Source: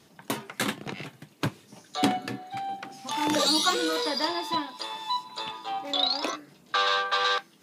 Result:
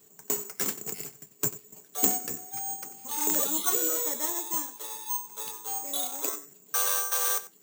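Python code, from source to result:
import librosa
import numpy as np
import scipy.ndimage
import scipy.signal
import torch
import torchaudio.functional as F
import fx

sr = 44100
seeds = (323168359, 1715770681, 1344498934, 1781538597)

p1 = fx.peak_eq(x, sr, hz=420.0, db=14.0, octaves=0.21)
p2 = p1 + fx.echo_single(p1, sr, ms=92, db=-16.5, dry=0)
p3 = (np.kron(scipy.signal.resample_poly(p2, 1, 6), np.eye(6)[0]) * 6)[:len(p2)]
y = p3 * librosa.db_to_amplitude(-9.5)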